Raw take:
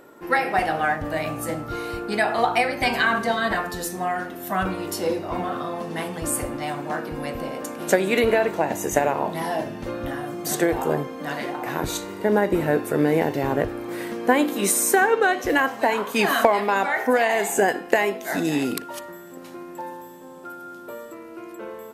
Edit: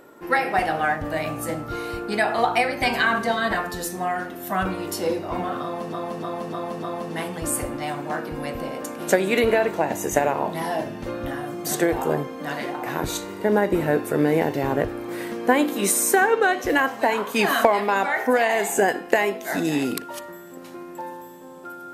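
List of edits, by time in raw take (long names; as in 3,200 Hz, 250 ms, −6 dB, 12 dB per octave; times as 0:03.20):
0:05.63–0:05.93: repeat, 5 plays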